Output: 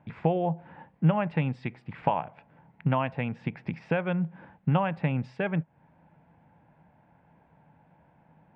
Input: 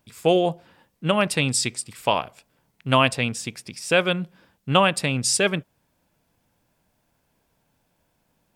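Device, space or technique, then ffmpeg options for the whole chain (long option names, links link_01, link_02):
bass amplifier: -af "acompressor=threshold=-35dB:ratio=4,highpass=62,equalizer=frequency=160:width_type=q:width=4:gain=9,equalizer=frequency=400:width_type=q:width=4:gain=-4,equalizer=frequency=850:width_type=q:width=4:gain=8,equalizer=frequency=1200:width_type=q:width=4:gain=-5,lowpass=frequency=2100:width=0.5412,lowpass=frequency=2100:width=1.3066,volume=7.5dB"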